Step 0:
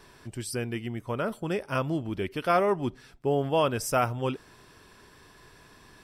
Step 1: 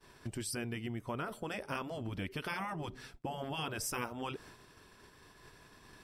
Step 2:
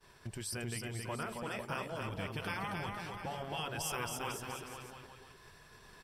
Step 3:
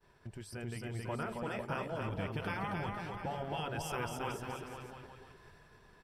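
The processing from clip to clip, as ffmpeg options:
-af "agate=range=-33dB:threshold=-45dB:ratio=3:detection=peak,afftfilt=real='re*lt(hypot(re,im),0.2)':imag='im*lt(hypot(re,im),0.2)':win_size=1024:overlap=0.75,acompressor=threshold=-48dB:ratio=2.5,volume=6.5dB"
-filter_complex "[0:a]equalizer=f=280:w=2.4:g=-7.5,asplit=2[a][b];[b]aecho=0:1:270|499.5|694.6|860.4|1001:0.631|0.398|0.251|0.158|0.1[c];[a][c]amix=inputs=2:normalize=0,volume=-1dB"
-af "dynaudnorm=f=230:g=7:m=6dB,highshelf=f=2.7k:g=-11.5,bandreject=f=1.1k:w=15,volume=-3dB"

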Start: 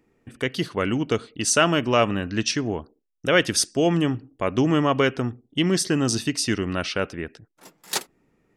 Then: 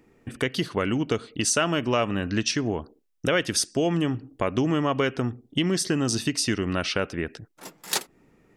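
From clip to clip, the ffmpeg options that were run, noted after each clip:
-af "acompressor=threshold=-31dB:ratio=2.5,volume=6dB"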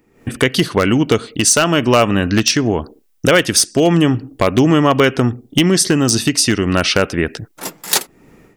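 -af "aeval=exprs='0.188*(abs(mod(val(0)/0.188+3,4)-2)-1)':c=same,highshelf=f=10k:g=7.5,dynaudnorm=f=130:g=3:m=14.5dB"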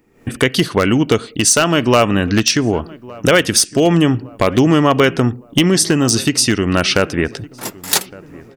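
-filter_complex "[0:a]asplit=2[a][b];[b]adelay=1162,lowpass=f=1.5k:p=1,volume=-21dB,asplit=2[c][d];[d]adelay=1162,lowpass=f=1.5k:p=1,volume=0.49,asplit=2[e][f];[f]adelay=1162,lowpass=f=1.5k:p=1,volume=0.49,asplit=2[g][h];[h]adelay=1162,lowpass=f=1.5k:p=1,volume=0.49[i];[a][c][e][g][i]amix=inputs=5:normalize=0"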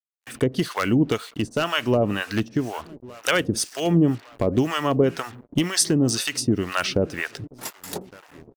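-filter_complex "[0:a]acrusher=bits=5:mix=0:aa=0.5,acrossover=split=680[a][b];[a]aeval=exprs='val(0)*(1-1/2+1/2*cos(2*PI*2*n/s))':c=same[c];[b]aeval=exprs='val(0)*(1-1/2-1/2*cos(2*PI*2*n/s))':c=same[d];[c][d]amix=inputs=2:normalize=0,volume=-3.5dB"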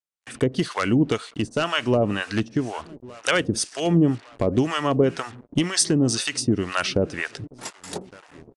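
-af "aresample=22050,aresample=44100"

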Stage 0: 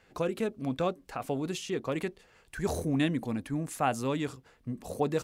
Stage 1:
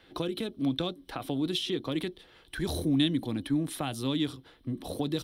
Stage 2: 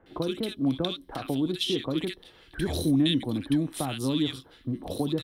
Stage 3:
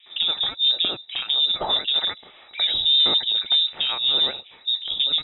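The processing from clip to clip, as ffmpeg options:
-filter_complex "[0:a]acrossover=split=170|3000[a][b][c];[b]acompressor=threshold=-36dB:ratio=6[d];[a][d][c]amix=inputs=3:normalize=0,superequalizer=6b=2.51:13b=3.16:15b=0.316,volume=2.5dB"
-filter_complex "[0:a]acrossover=split=1400[a][b];[b]adelay=60[c];[a][c]amix=inputs=2:normalize=0,volume=3dB"
-af "aeval=exprs='(tanh(11.2*val(0)+0.25)-tanh(0.25))/11.2':c=same,lowpass=f=3.3k:t=q:w=0.5098,lowpass=f=3.3k:t=q:w=0.6013,lowpass=f=3.3k:t=q:w=0.9,lowpass=f=3.3k:t=q:w=2.563,afreqshift=-3900,volume=8dB"

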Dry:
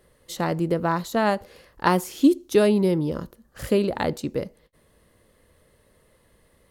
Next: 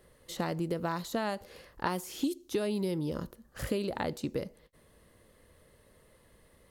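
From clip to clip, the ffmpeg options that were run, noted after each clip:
-filter_complex "[0:a]acrossover=split=2900[a][b];[a]acompressor=threshold=-28dB:ratio=6[c];[b]alimiter=level_in=9.5dB:limit=-24dB:level=0:latency=1,volume=-9.5dB[d];[c][d]amix=inputs=2:normalize=0,volume=-1.5dB"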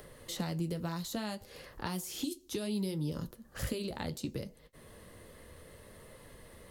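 -filter_complex "[0:a]asplit=2[a][b];[b]acompressor=mode=upward:threshold=-39dB:ratio=2.5,volume=-3dB[c];[a][c]amix=inputs=2:normalize=0,flanger=delay=6.6:depth=7:regen=-51:speed=0.64:shape=triangular,acrossover=split=200|3000[d][e][f];[e]acompressor=threshold=-48dB:ratio=2[g];[d][g][f]amix=inputs=3:normalize=0,volume=1.5dB"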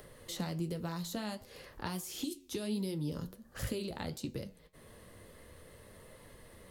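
-af "flanger=delay=7.6:depth=4.4:regen=86:speed=1.4:shape=triangular,volume=3dB"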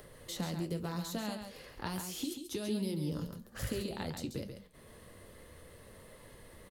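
-af "aecho=1:1:137:0.447"

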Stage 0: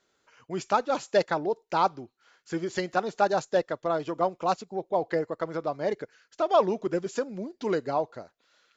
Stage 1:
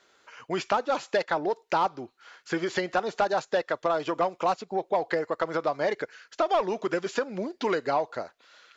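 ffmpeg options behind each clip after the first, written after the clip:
-filter_complex "[0:a]asplit=2[a][b];[b]highpass=f=720:p=1,volume=11dB,asoftclip=type=tanh:threshold=-10.5dB[c];[a][c]amix=inputs=2:normalize=0,lowpass=f=4k:p=1,volume=-6dB,acrossover=split=920|4800[d][e][f];[d]acompressor=threshold=-32dB:ratio=4[g];[e]acompressor=threshold=-36dB:ratio=4[h];[f]acompressor=threshold=-57dB:ratio=4[i];[g][h][i]amix=inputs=3:normalize=0,volume=5.5dB"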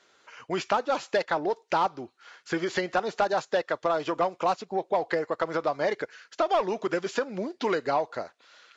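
-ar 22050 -c:a libvorbis -b:a 48k

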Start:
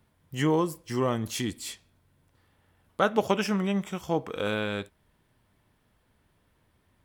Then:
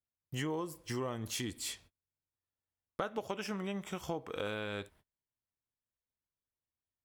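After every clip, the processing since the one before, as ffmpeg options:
-af "agate=range=-33dB:threshold=-55dB:ratio=16:detection=peak,equalizer=f=190:w=1.7:g=-4,acompressor=threshold=-35dB:ratio=5"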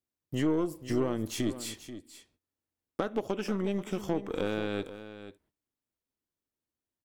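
-af "equalizer=f=300:t=o:w=1.4:g=11.5,aeval=exprs='0.178*(cos(1*acos(clip(val(0)/0.178,-1,1)))-cos(1*PI/2))+0.00891*(cos(8*acos(clip(val(0)/0.178,-1,1)))-cos(8*PI/2))':c=same,aecho=1:1:485:0.224"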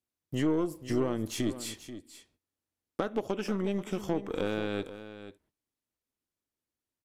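-af "aresample=32000,aresample=44100"

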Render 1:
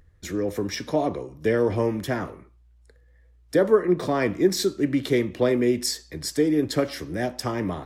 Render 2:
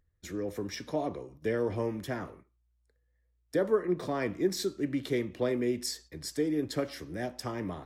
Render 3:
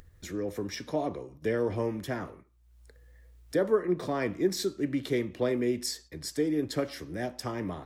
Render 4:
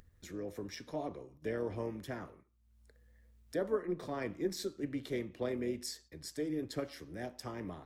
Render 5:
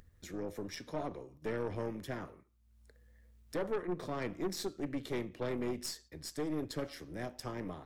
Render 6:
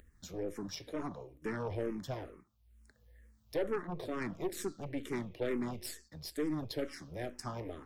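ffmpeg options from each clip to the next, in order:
-af "agate=range=-9dB:threshold=-43dB:ratio=16:detection=peak,volume=-8.5dB"
-af "acompressor=mode=upward:threshold=-42dB:ratio=2.5,volume=1.5dB"
-af "tremolo=f=160:d=0.4,volume=-6.5dB"
-af "aeval=exprs='(tanh(50.1*val(0)+0.55)-tanh(0.55))/50.1':c=same,volume=4dB"
-filter_complex "[0:a]asplit=2[a][b];[b]afreqshift=-2.2[c];[a][c]amix=inputs=2:normalize=1,volume=3.5dB"

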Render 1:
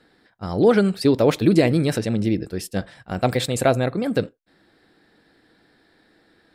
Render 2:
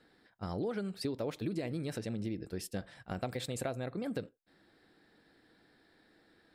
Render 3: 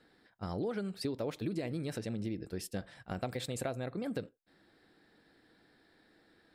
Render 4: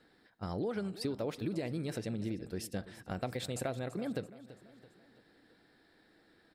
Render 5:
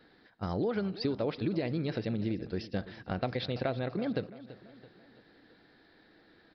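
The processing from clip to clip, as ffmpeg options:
-af "acompressor=threshold=-27dB:ratio=5,volume=-7.5dB"
-af anull
-af "aecho=1:1:334|668|1002|1336:0.15|0.0718|0.0345|0.0165"
-af "aresample=11025,aresample=44100,volume=4.5dB"

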